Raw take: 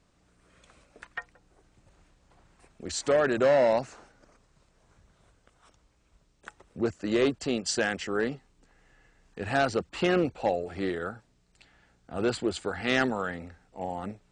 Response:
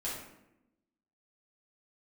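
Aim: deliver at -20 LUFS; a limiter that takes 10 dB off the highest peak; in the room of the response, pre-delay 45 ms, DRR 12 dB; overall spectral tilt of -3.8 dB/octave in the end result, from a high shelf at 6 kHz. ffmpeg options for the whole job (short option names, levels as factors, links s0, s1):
-filter_complex "[0:a]highshelf=f=6000:g=9,alimiter=limit=0.1:level=0:latency=1,asplit=2[s0][s1];[1:a]atrim=start_sample=2205,adelay=45[s2];[s1][s2]afir=irnorm=-1:irlink=0,volume=0.178[s3];[s0][s3]amix=inputs=2:normalize=0,volume=3.98"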